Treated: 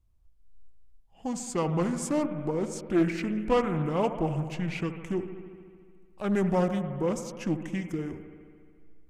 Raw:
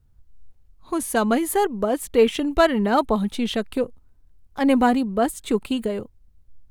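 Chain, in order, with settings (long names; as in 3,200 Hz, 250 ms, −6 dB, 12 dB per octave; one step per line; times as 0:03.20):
spring reverb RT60 1.5 s, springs 52 ms, chirp 35 ms, DRR 8 dB
change of speed 0.738×
highs frequency-modulated by the lows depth 0.26 ms
level −8 dB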